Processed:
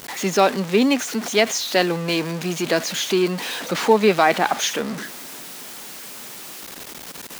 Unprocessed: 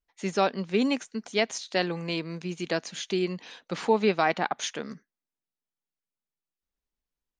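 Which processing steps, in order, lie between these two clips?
converter with a step at zero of −31.5 dBFS
high-pass filter 180 Hz 12 dB per octave
level +7 dB

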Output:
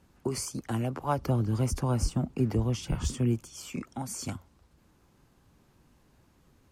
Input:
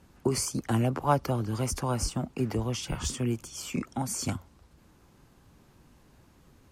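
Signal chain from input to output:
0:01.18–0:03.40: low-shelf EQ 420 Hz +9 dB
level −4.5 dB

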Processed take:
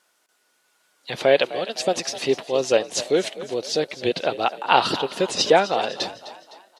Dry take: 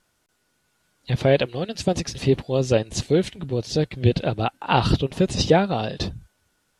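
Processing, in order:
high-pass filter 460 Hz 12 dB per octave
echo with shifted repeats 255 ms, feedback 47%, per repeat +44 Hz, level −15 dB
level +4 dB

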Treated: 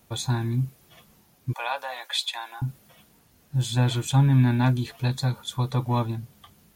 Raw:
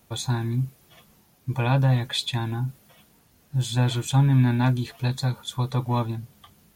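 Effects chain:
0:01.53–0:02.62: high-pass filter 640 Hz 24 dB per octave

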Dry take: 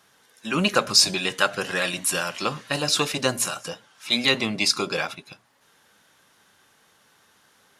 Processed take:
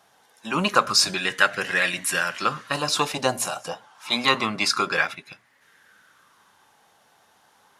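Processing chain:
0:03.69–0:05.04: parametric band 1,100 Hz +6 dB 1 octave
auto-filter bell 0.28 Hz 740–2,000 Hz +11 dB
level −2.5 dB

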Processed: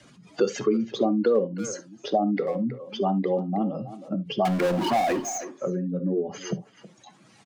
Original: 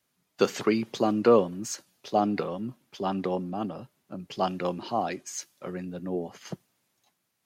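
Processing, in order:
expanding power law on the bin magnitudes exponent 2
Butterworth low-pass 8,800 Hz 36 dB per octave
0:04.45–0:05.38: power curve on the samples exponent 0.5
far-end echo of a speakerphone 320 ms, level −17 dB
on a send at −10 dB: convolution reverb, pre-delay 4 ms
on the sum: multiband upward and downward compressor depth 70%
level +2.5 dB

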